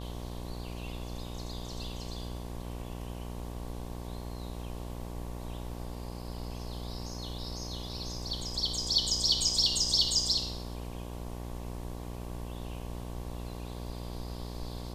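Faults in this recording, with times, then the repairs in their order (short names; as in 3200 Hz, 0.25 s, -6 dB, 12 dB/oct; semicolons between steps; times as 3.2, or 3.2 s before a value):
buzz 60 Hz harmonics 19 -40 dBFS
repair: de-hum 60 Hz, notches 19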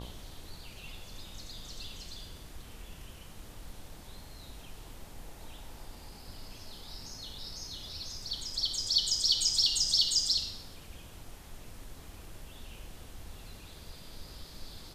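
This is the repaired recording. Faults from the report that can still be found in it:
none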